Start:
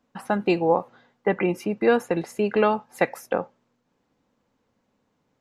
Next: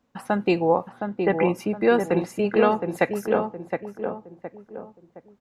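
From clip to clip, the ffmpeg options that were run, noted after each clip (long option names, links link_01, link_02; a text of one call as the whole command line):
ffmpeg -i in.wav -filter_complex "[0:a]equalizer=frequency=63:width=0.82:gain=6,asplit=2[link_01][link_02];[link_02]adelay=716,lowpass=frequency=1300:poles=1,volume=-5dB,asplit=2[link_03][link_04];[link_04]adelay=716,lowpass=frequency=1300:poles=1,volume=0.4,asplit=2[link_05][link_06];[link_06]adelay=716,lowpass=frequency=1300:poles=1,volume=0.4,asplit=2[link_07][link_08];[link_08]adelay=716,lowpass=frequency=1300:poles=1,volume=0.4,asplit=2[link_09][link_10];[link_10]adelay=716,lowpass=frequency=1300:poles=1,volume=0.4[link_11];[link_03][link_05][link_07][link_09][link_11]amix=inputs=5:normalize=0[link_12];[link_01][link_12]amix=inputs=2:normalize=0" out.wav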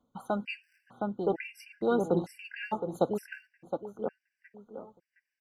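ffmpeg -i in.wav -af "aphaser=in_gain=1:out_gain=1:delay=4.3:decay=0.35:speed=0.97:type=sinusoidal,afftfilt=real='re*gt(sin(2*PI*1.1*pts/sr)*(1-2*mod(floor(b*sr/1024/1500),2)),0)':imag='im*gt(sin(2*PI*1.1*pts/sr)*(1-2*mod(floor(b*sr/1024/1500),2)),0)':win_size=1024:overlap=0.75,volume=-7dB" out.wav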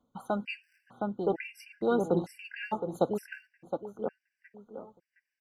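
ffmpeg -i in.wav -af anull out.wav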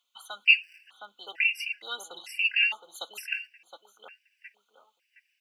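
ffmpeg -i in.wav -af "highpass=frequency=2700:width_type=q:width=4.6,volume=8.5dB" out.wav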